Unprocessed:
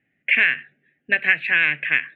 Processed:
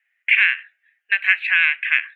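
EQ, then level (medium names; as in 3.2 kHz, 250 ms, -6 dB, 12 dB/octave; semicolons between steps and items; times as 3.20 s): high-pass 1.1 kHz 24 dB/octave; dynamic bell 1.8 kHz, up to -5 dB, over -31 dBFS, Q 7.3; +3.0 dB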